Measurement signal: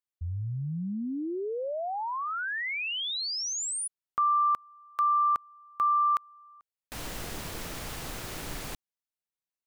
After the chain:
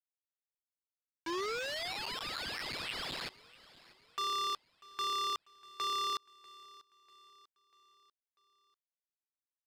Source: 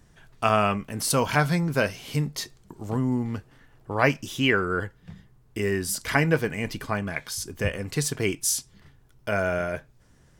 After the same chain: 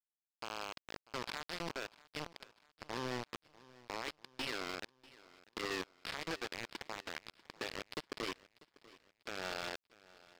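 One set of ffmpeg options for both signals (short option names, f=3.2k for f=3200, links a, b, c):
-filter_complex "[0:a]highpass=f=270:w=0.5412,highpass=f=270:w=1.3066,adynamicequalizer=threshold=0.00562:dfrequency=370:dqfactor=6.5:tfrequency=370:tqfactor=6.5:attack=5:release=100:ratio=0.375:range=3:mode=boostabove:tftype=bell,acompressor=threshold=-29dB:ratio=10:attack=0.65:release=99:knee=1:detection=peak,aresample=11025,acrusher=bits=4:mix=0:aa=0.000001,aresample=44100,volume=26.5dB,asoftclip=hard,volume=-26.5dB,asplit=2[a][b];[b]aecho=0:1:643|1286|1929|2572:0.0891|0.0437|0.0214|0.0105[c];[a][c]amix=inputs=2:normalize=0,volume=-4dB"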